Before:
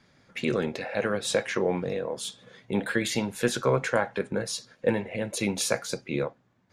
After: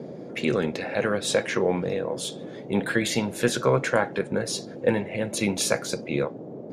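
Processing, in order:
noise in a band 130–570 Hz −41 dBFS
level +2.5 dB

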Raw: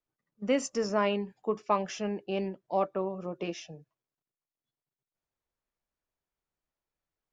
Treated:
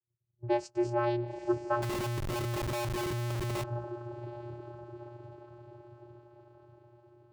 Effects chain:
low-pass that shuts in the quiet parts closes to 340 Hz, open at −26 dBFS
feedback delay with all-pass diffusion 908 ms, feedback 51%, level −9 dB
channel vocoder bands 8, square 119 Hz
0:01.82–0:03.64: comparator with hysteresis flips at −38.5 dBFS

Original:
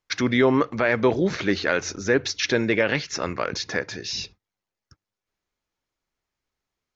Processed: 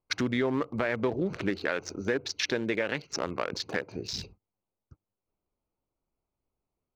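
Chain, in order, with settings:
adaptive Wiener filter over 25 samples
0:01.50–0:03.96: low-shelf EQ 140 Hz −8.5 dB
downward compressor 3 to 1, threshold −30 dBFS, peak gain reduction 12 dB
level +2 dB

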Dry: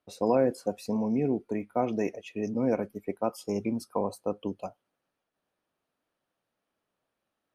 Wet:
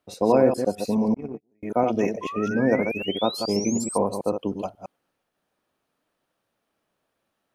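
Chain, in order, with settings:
delay that plays each chunk backwards 108 ms, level −6 dB
0:01.14–0:01.63: noise gate −22 dBFS, range −43 dB
0:02.21–0:03.98: sound drawn into the spectrogram rise 1,000–8,900 Hz −40 dBFS
level +5.5 dB

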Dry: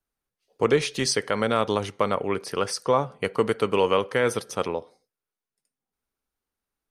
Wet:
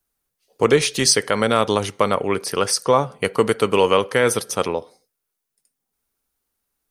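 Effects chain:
high-shelf EQ 6,500 Hz +10.5 dB
level +5 dB

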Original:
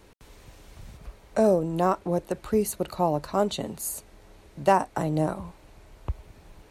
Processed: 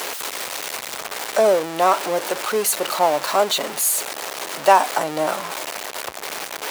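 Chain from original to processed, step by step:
converter with a step at zero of −27 dBFS
high-pass filter 590 Hz 12 dB per octave
level +8 dB

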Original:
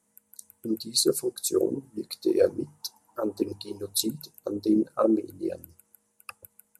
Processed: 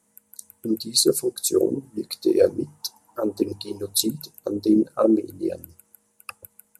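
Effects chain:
dynamic equaliser 1,200 Hz, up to −4 dB, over −41 dBFS, Q 0.95
level +5 dB

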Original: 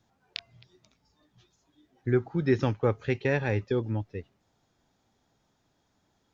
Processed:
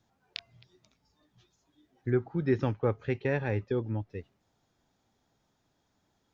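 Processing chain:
0:02.10–0:04.10: high-shelf EQ 4,200 Hz −11.5 dB
level −2.5 dB

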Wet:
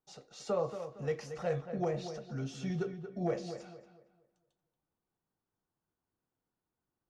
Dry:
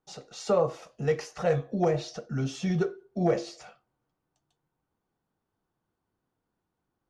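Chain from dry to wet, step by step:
feedback echo with a low-pass in the loop 230 ms, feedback 33%, low-pass 2,700 Hz, level −9.5 dB
level −8.5 dB

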